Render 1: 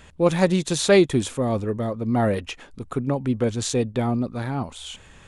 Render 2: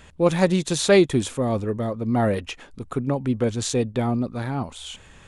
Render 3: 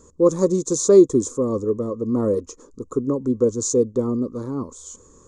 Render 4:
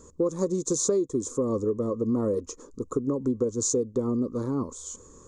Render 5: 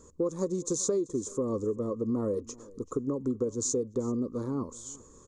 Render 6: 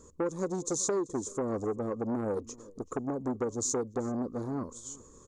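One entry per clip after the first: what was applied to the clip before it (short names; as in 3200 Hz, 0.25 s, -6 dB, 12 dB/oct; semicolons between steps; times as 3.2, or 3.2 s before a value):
nothing audible
EQ curve 170 Hz 0 dB, 280 Hz +9 dB, 490 Hz +12 dB, 740 Hz -14 dB, 1100 Hz +8 dB, 1600 Hz -15 dB, 2800 Hz -24 dB, 6800 Hz +14 dB, 9700 Hz -6 dB; gain -5 dB
compressor 10:1, threshold -22 dBFS, peak gain reduction 15.5 dB
echo 0.385 s -22 dB; gain -4 dB
core saturation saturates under 800 Hz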